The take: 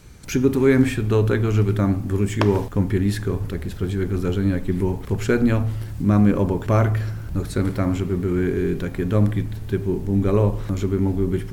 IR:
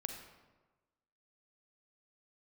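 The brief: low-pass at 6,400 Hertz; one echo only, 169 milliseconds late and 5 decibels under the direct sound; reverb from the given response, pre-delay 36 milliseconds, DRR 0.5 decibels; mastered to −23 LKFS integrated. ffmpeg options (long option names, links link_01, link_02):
-filter_complex "[0:a]lowpass=6400,aecho=1:1:169:0.562,asplit=2[link_01][link_02];[1:a]atrim=start_sample=2205,adelay=36[link_03];[link_02][link_03]afir=irnorm=-1:irlink=0,volume=0.5dB[link_04];[link_01][link_04]amix=inputs=2:normalize=0,volume=-5dB"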